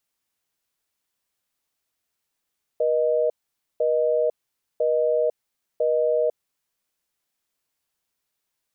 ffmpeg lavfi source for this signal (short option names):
-f lavfi -i "aevalsrc='0.0891*(sin(2*PI*480*t)+sin(2*PI*620*t))*clip(min(mod(t,1),0.5-mod(t,1))/0.005,0,1)':d=3.9:s=44100"